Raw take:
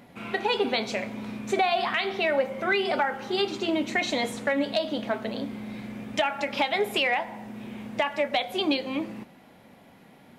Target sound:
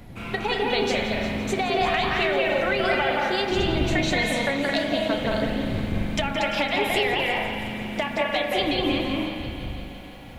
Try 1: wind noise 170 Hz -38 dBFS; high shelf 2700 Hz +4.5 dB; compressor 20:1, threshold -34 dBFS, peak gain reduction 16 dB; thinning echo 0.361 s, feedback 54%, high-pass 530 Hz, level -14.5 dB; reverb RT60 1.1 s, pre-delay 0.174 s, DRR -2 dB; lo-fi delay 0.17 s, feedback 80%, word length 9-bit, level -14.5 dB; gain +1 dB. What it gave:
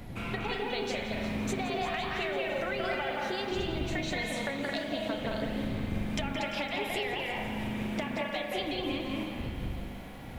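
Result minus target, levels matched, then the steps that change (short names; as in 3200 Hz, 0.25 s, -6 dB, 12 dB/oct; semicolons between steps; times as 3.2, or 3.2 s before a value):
compressor: peak gain reduction +10.5 dB
change: compressor 20:1, threshold -23 dBFS, peak gain reduction 5.5 dB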